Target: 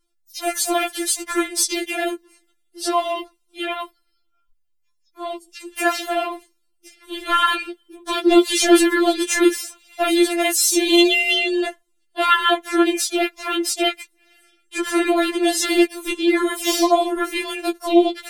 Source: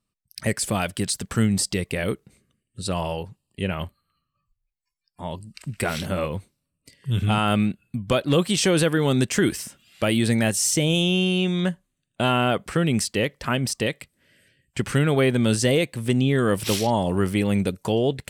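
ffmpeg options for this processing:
-filter_complex "[0:a]asplit=4[a][b][c][d];[b]asetrate=33038,aresample=44100,atempo=1.33484,volume=-8dB[e];[c]asetrate=52444,aresample=44100,atempo=0.840896,volume=-5dB[f];[d]asetrate=55563,aresample=44100,atempo=0.793701,volume=-7dB[g];[a][e][f][g]amix=inputs=4:normalize=0,afftfilt=real='re*4*eq(mod(b,16),0)':imag='im*4*eq(mod(b,16),0)':win_size=2048:overlap=0.75,volume=5.5dB"

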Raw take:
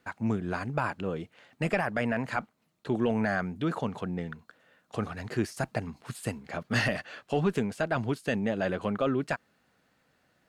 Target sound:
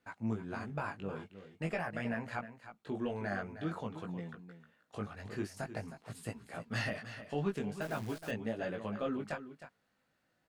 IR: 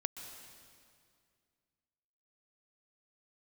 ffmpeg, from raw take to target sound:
-filter_complex "[0:a]flanger=delay=17.5:depth=2.8:speed=0.47,aecho=1:1:312:0.251,asettb=1/sr,asplit=3[a][b][c];[a]atrim=end=7.814[d];[b]atrim=start=7.81:end=8.31,asetpts=PTS-STARTPTS,afade=t=in:d=0.004:c=qsin,afade=t=out:st=0.496:d=0.004:c=qsin,acrusher=bits=8:dc=4:mix=0:aa=0.000001[e];[c]atrim=start=8.306[f];[d][e]acrossfade=d=0.004:c1=hsin:c2=qsin[g];[g][f]acrossfade=d=0.004:c1=qsin:c2=hsin,volume=-6dB"

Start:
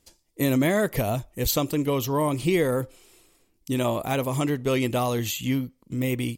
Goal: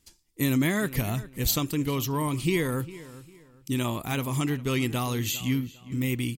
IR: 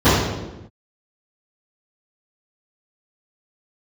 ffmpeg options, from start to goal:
-filter_complex "[0:a]equalizer=f=590:t=o:w=0.99:g=-12,asplit=2[a][b];[b]adelay=402,lowpass=f=3.7k:p=1,volume=-17dB,asplit=2[c][d];[d]adelay=402,lowpass=f=3.7k:p=1,volume=0.3,asplit=2[e][f];[f]adelay=402,lowpass=f=3.7k:p=1,volume=0.3[g];[a][c][e][g]amix=inputs=4:normalize=0"

